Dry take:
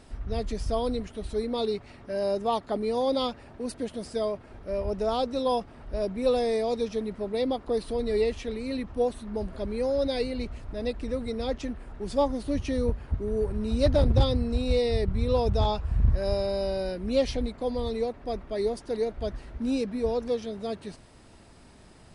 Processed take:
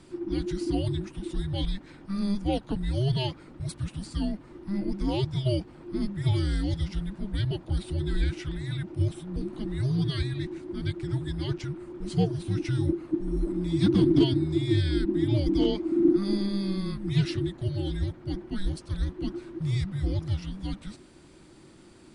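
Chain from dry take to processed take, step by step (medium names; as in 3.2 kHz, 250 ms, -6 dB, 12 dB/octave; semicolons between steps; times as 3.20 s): frequency shift -390 Hz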